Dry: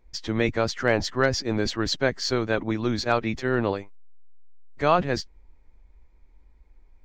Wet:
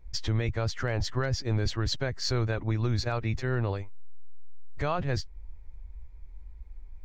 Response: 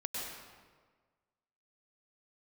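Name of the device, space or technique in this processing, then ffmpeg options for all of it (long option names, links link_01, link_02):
car stereo with a boomy subwoofer: -filter_complex "[0:a]lowshelf=frequency=150:width_type=q:width=1.5:gain=10,alimiter=limit=-18dB:level=0:latency=1:release=325,asettb=1/sr,asplit=3[link_01][link_02][link_03];[link_01]atrim=end=2.064[link_04];[link_02]atrim=start=2.06:end=3.7,asetpts=PTS-STARTPTS,afade=type=in:duration=0.004:curve=qsin,afade=type=out:start_time=1.636:duration=0.004:curve=qsin,bandreject=frequency=3200:width=11[link_05];[link_03]atrim=start=3.696[link_06];[link_04][link_05]acrossfade=duration=0.004:curve1=hsin:curve2=qsin[link_07];[link_07][link_06]acrossfade=duration=0.004:curve1=qsin:curve2=hsin"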